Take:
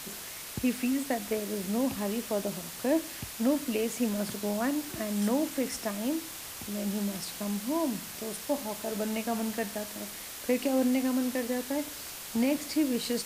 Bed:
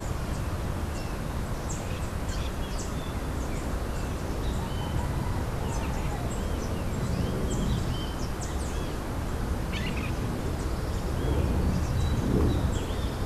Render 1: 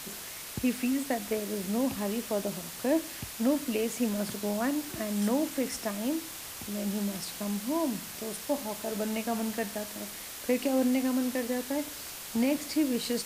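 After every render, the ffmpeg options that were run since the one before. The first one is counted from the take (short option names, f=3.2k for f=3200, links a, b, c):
-af anull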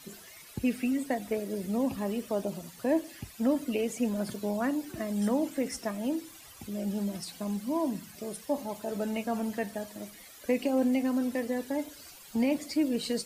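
-af "afftdn=nr=14:nf=-42"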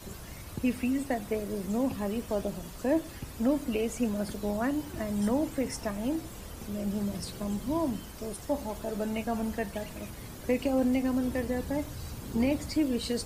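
-filter_complex "[1:a]volume=-14dB[a];[0:a][a]amix=inputs=2:normalize=0"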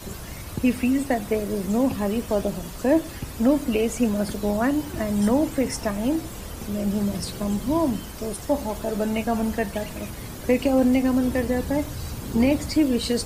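-af "volume=7.5dB"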